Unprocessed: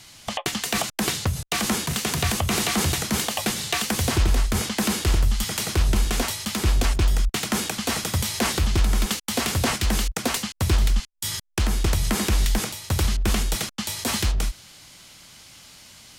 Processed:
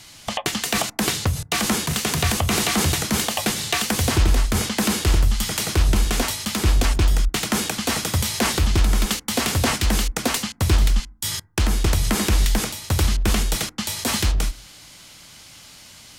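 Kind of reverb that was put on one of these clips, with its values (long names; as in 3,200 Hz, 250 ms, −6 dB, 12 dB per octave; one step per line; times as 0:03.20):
feedback delay network reverb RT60 0.47 s, low-frequency decay 1.45×, high-frequency decay 0.25×, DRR 19.5 dB
level +2.5 dB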